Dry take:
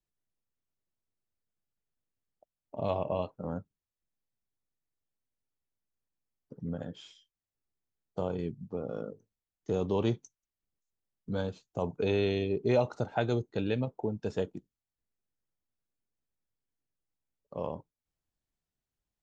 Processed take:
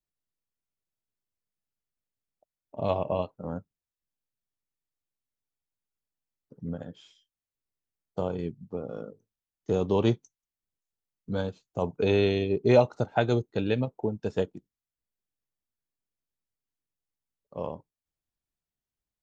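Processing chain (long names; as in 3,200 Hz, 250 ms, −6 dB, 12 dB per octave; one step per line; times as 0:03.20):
expander for the loud parts 1.5 to 1, over −45 dBFS
level +7.5 dB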